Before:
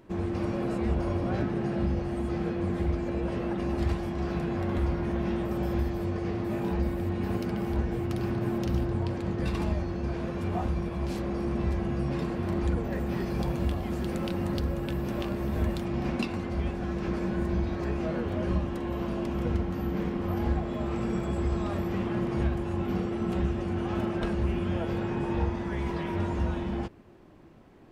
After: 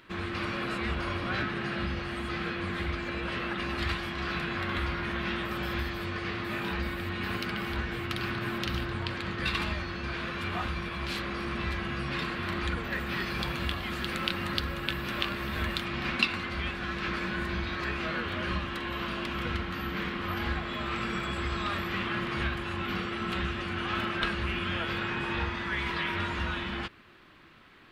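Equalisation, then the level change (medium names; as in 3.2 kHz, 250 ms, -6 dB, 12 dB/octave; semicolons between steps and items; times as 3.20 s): high-order bell 2.2 kHz +15.5 dB 2.3 oct; treble shelf 4.3 kHz +9.5 dB; -6.0 dB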